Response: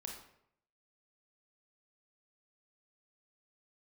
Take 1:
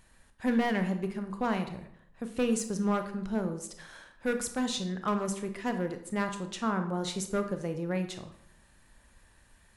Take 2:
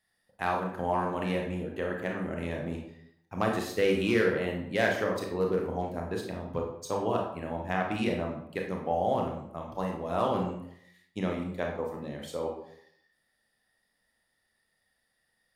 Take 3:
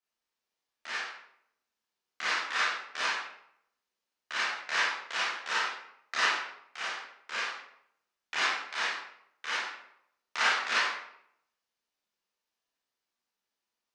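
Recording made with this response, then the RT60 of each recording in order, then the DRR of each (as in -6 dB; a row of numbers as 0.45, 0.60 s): 2; 0.70, 0.70, 0.70 s; 7.0, 0.5, -8.5 dB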